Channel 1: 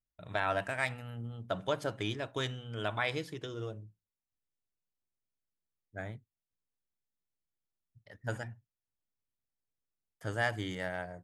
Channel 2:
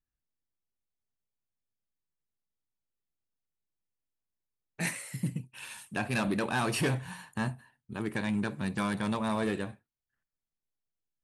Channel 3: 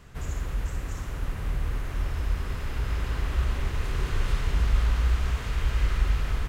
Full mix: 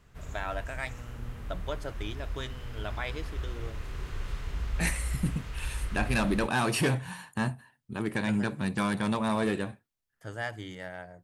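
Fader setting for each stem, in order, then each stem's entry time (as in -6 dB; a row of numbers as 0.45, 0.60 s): -3.5, +2.5, -9.5 dB; 0.00, 0.00, 0.00 s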